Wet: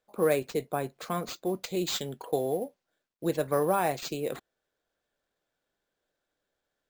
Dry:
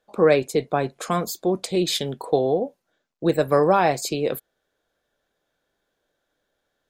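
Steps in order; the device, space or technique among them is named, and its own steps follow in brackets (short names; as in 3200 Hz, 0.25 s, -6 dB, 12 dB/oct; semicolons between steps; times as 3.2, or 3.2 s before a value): 1.47–3.38 high shelf 6300 Hz +4.5 dB; early companding sampler (sample-rate reducer 11000 Hz, jitter 0%; companded quantiser 8-bit); gain -8.5 dB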